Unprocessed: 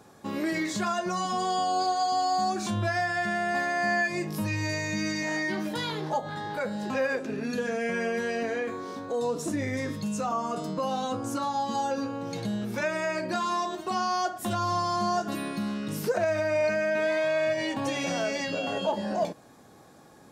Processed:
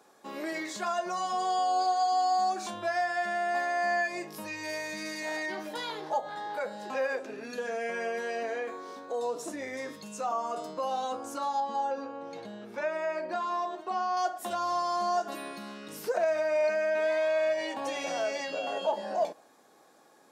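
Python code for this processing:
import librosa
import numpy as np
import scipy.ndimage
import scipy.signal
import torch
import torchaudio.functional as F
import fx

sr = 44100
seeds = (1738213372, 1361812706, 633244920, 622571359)

y = fx.self_delay(x, sr, depth_ms=0.057, at=(4.63, 5.46))
y = fx.lowpass(y, sr, hz=2100.0, slope=6, at=(11.6, 14.17))
y = scipy.signal.sosfilt(scipy.signal.butter(2, 370.0, 'highpass', fs=sr, output='sos'), y)
y = fx.dynamic_eq(y, sr, hz=720.0, q=1.4, threshold_db=-41.0, ratio=4.0, max_db=5)
y = y * librosa.db_to_amplitude(-4.5)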